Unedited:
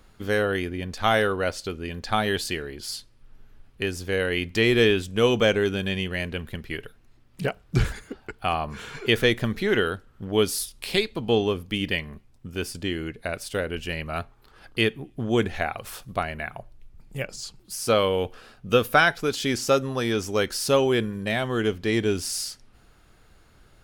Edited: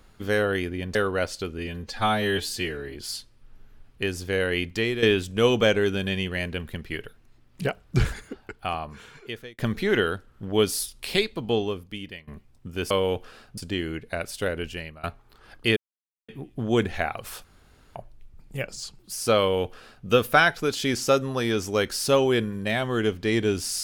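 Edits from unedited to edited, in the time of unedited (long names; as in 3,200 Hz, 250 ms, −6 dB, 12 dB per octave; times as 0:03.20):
0:00.95–0:01.20: remove
0:01.83–0:02.74: time-stretch 1.5×
0:04.38–0:04.82: fade out, to −11.5 dB
0:08.00–0:09.38: fade out
0:11.04–0:12.07: fade out, to −21.5 dB
0:13.72–0:14.16: fade out, to −20.5 dB
0:14.89: splice in silence 0.52 s
0:16.05–0:16.56: fill with room tone
0:18.00–0:18.67: duplicate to 0:12.70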